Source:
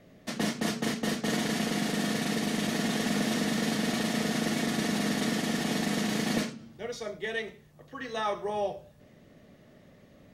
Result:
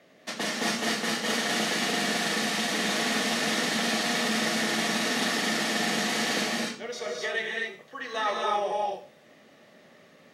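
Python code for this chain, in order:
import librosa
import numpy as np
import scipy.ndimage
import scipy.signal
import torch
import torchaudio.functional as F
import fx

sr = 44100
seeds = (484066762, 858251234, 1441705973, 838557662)

p1 = fx.weighting(x, sr, curve='A')
p2 = 10.0 ** (-27.5 / 20.0) * np.tanh(p1 / 10.0 ** (-27.5 / 20.0))
p3 = p1 + (p2 * librosa.db_to_amplitude(-9.0))
y = fx.rev_gated(p3, sr, seeds[0], gate_ms=290, shape='rising', drr_db=-1.0)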